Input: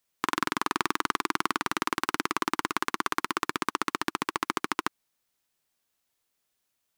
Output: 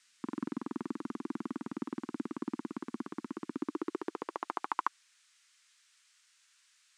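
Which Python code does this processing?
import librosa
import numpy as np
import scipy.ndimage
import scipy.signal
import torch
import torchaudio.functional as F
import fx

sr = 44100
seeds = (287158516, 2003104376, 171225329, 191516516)

y = fx.filter_sweep_bandpass(x, sr, from_hz=230.0, to_hz=1600.0, start_s=3.47, end_s=5.28, q=2.9)
y = fx.dmg_noise_band(y, sr, seeds[0], low_hz=1300.0, high_hz=8700.0, level_db=-71.0)
y = F.gain(torch.from_numpy(y), 2.5).numpy()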